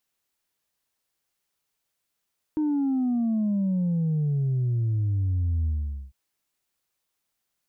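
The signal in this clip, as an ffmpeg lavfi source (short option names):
-f lavfi -i "aevalsrc='0.0794*clip((3.55-t)/0.46,0,1)*tanh(1.12*sin(2*PI*310*3.55/log(65/310)*(exp(log(65/310)*t/3.55)-1)))/tanh(1.12)':d=3.55:s=44100"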